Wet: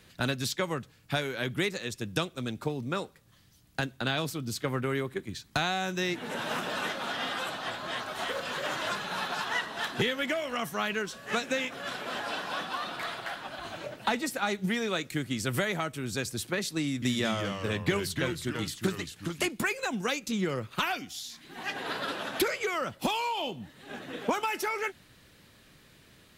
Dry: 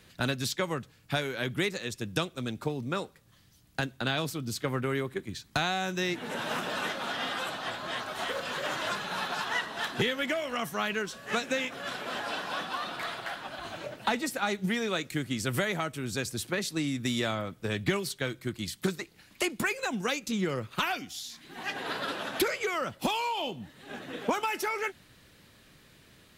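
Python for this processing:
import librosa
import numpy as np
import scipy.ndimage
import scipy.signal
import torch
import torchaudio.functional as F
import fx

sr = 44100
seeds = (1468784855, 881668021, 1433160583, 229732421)

y = fx.echo_pitch(x, sr, ms=170, semitones=-2, count=2, db_per_echo=-6.0, at=(16.85, 19.49))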